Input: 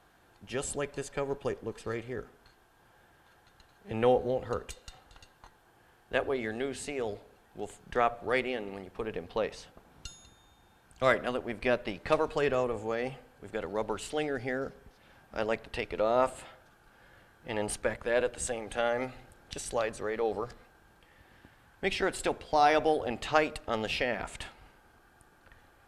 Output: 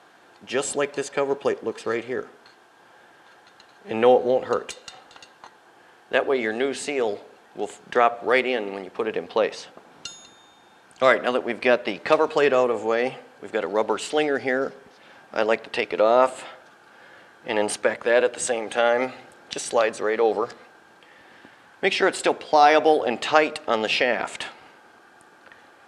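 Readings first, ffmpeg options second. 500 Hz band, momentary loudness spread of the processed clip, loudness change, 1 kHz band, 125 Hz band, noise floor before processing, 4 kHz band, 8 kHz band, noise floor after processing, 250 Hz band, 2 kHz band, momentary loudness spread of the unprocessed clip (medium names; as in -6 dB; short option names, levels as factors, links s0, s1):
+9.5 dB, 14 LU, +9.0 dB, +9.0 dB, -1.5 dB, -63 dBFS, +10.0 dB, +7.5 dB, -54 dBFS, +7.5 dB, +9.5 dB, 15 LU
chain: -filter_complex "[0:a]asplit=2[s0][s1];[s1]alimiter=limit=0.119:level=0:latency=1:release=240,volume=0.841[s2];[s0][s2]amix=inputs=2:normalize=0,highpass=260,lowpass=7900,volume=1.88"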